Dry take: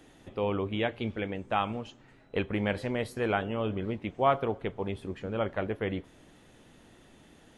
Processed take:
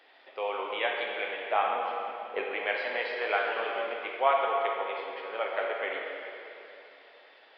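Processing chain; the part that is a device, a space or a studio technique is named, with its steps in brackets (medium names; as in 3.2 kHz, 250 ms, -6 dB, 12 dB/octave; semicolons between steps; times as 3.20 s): 1.51–2.43 s: tilt EQ -3.5 dB/octave; plate-style reverb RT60 3 s, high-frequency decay 0.9×, DRR -1.5 dB; musical greeting card (resampled via 11.025 kHz; high-pass 520 Hz 24 dB/octave; peaking EQ 2.1 kHz +4.5 dB 0.55 oct)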